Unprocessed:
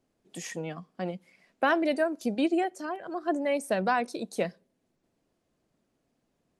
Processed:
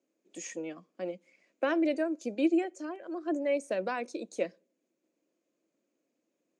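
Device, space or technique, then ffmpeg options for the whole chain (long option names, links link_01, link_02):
television speaker: -af "highpass=frequency=200:width=0.5412,highpass=frequency=200:width=1.3066,equalizer=frequency=320:width_type=q:width=4:gain=10,equalizer=frequency=540:width_type=q:width=4:gain=9,equalizer=frequency=790:width_type=q:width=4:gain=-4,equalizer=frequency=2400:width_type=q:width=4:gain=7,equalizer=frequency=6700:width_type=q:width=4:gain=10,lowpass=frequency=8600:width=0.5412,lowpass=frequency=8600:width=1.3066,volume=-8.5dB"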